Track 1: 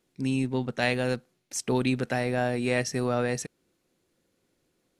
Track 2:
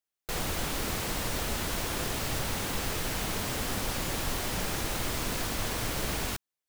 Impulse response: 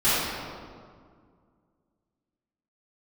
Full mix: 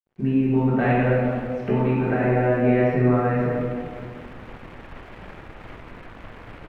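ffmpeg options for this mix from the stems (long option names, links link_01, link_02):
-filter_complex "[0:a]highshelf=frequency=3100:gain=-10.5,acompressor=threshold=-30dB:ratio=6,volume=1dB,asplit=3[link_01][link_02][link_03];[link_02]volume=-5.5dB[link_04];[1:a]acrusher=bits=6:dc=4:mix=0:aa=0.000001,adelay=650,volume=-6.5dB[link_05];[link_03]apad=whole_len=323467[link_06];[link_05][link_06]sidechaincompress=threshold=-46dB:ratio=8:attack=16:release=115[link_07];[2:a]atrim=start_sample=2205[link_08];[link_04][link_08]afir=irnorm=-1:irlink=0[link_09];[link_01][link_07][link_09]amix=inputs=3:normalize=0,lowpass=frequency=2400:width=0.5412,lowpass=frequency=2400:width=1.3066,aeval=exprs='sgn(val(0))*max(abs(val(0))-0.00133,0)':channel_layout=same"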